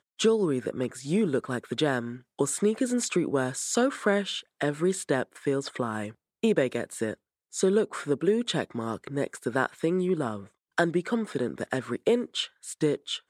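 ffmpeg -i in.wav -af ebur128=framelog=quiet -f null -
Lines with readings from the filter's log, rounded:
Integrated loudness:
  I:         -28.3 LUFS
  Threshold: -38.4 LUFS
Loudness range:
  LRA:         2.1 LU
  Threshold: -48.4 LUFS
  LRA low:   -29.5 LUFS
  LRA high:  -27.4 LUFS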